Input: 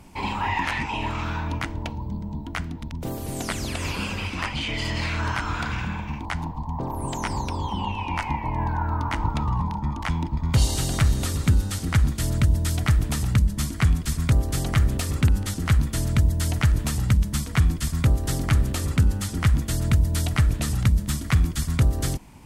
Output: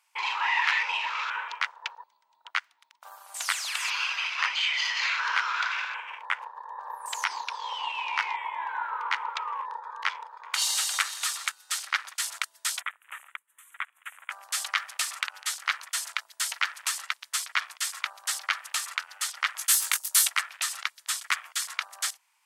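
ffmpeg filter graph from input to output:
ffmpeg -i in.wav -filter_complex "[0:a]asettb=1/sr,asplit=3[link_01][link_02][link_03];[link_01]atrim=end=12.814[link_04];[link_02]atrim=start=12.81:end=14.3,asetpts=PTS-STARTPTS,afade=type=in:duration=0.004:curve=qsin,afade=type=out:start_time=1.486:duration=0.004:curve=qsin,acompressor=threshold=-25dB:ratio=12:attack=3.2:release=140:knee=1:detection=peak,asuperstop=centerf=4900:order=4:qfactor=0.94,equalizer=frequency=700:width_type=o:width=0.5:gain=-8[link_05];[link_03]atrim=start=14.296[link_06];[link_04][link_05]acrossfade=duration=0.004:curve1=hsin:curve2=qsin[link_07];[link_07][link_06]acrossfade=duration=0.004:curve1=qsin:curve2=hsin,asettb=1/sr,asplit=3[link_08][link_09][link_10];[link_08]atrim=end=19.574[link_11];[link_09]atrim=start=19.57:end=20.28,asetpts=PTS-STARTPTS,afade=type=in:duration=0.004:curve=qsin,afade=type=out:start_time=0.706:duration=0.004:curve=qsin,highshelf=frequency=6600:gain=11.5,asplit=2[link_12][link_13];[link_13]adelay=20,volume=-3dB[link_14];[link_12][link_14]amix=inputs=2:normalize=0,atrim=end_sample=31311,afreqshift=-54[link_15];[link_10]atrim=start=20.276[link_16];[link_11][link_15]acrossfade=duration=0.004:curve1=hsin:curve2=qsin[link_17];[link_17][link_16]acrossfade=duration=0.004:curve1=qsin:curve2=hsin,highpass=frequency=1100:width=0.5412,highpass=frequency=1100:width=1.3066,afwtdn=0.00631,volume=4dB" out.wav

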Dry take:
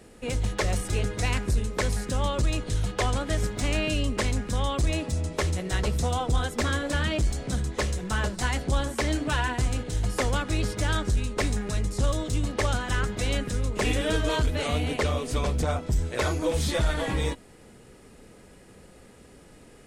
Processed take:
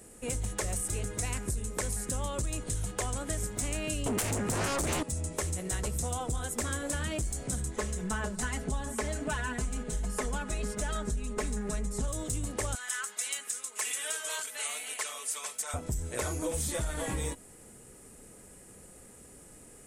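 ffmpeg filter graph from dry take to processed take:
ffmpeg -i in.wav -filter_complex "[0:a]asettb=1/sr,asplit=3[link_01][link_02][link_03];[link_01]atrim=end=4.064[link_04];[link_02]atrim=start=4.06:end=5.03,asetpts=PTS-STARTPTS,afade=type=in:duration=0.004:curve=qsin,afade=type=out:start_time=0.966:duration=0.004:curve=qsin,highpass=frequency=79:width=0.5412,highpass=frequency=79:width=1.3066,highshelf=frequency=4000:gain=-9.5,aeval=exprs='0.15*sin(PI/2*4.47*val(0)/0.15)':channel_layout=same[link_05];[link_03]atrim=start=5.026[link_06];[link_04][link_05]acrossfade=duration=0.004:curve1=hsin:curve2=qsin[link_07];[link_07][link_06]acrossfade=duration=0.004:curve1=qsin:curve2=hsin,asettb=1/sr,asplit=3[link_08][link_09][link_10];[link_08]atrim=end=7.764[link_11];[link_09]atrim=start=7.76:end=12.08,asetpts=PTS-STARTPTS,afade=type=in:duration=0.004:curve=qsin,afade=type=out:start_time=4.316:duration=0.004:curve=qsin,lowpass=frequency=3600:poles=1,aecho=1:1:4.7:0.84,atrim=end_sample=190512[link_12];[link_10]atrim=start=12.076[link_13];[link_11][link_12]acrossfade=duration=0.004:curve1=hsin:curve2=qsin[link_14];[link_14][link_13]acrossfade=duration=0.004:curve1=qsin:curve2=hsin,asettb=1/sr,asplit=3[link_15][link_16][link_17];[link_15]atrim=end=12.754[link_18];[link_16]atrim=start=12.75:end=15.74,asetpts=PTS-STARTPTS,afade=type=in:duration=0.004:curve=qsin,afade=type=out:start_time=2.986:duration=0.004:curve=qsin,highpass=1300,aecho=1:1:4.6:0.49,atrim=end_sample=131859[link_19];[link_17]atrim=start=15.736[link_20];[link_18][link_19]acrossfade=duration=0.004:curve1=hsin:curve2=qsin[link_21];[link_21][link_20]acrossfade=duration=0.004:curve1=qsin:curve2=hsin,highshelf=frequency=6000:width_type=q:width=1.5:gain=11,acompressor=threshold=-25dB:ratio=6,volume=-4dB" out.wav

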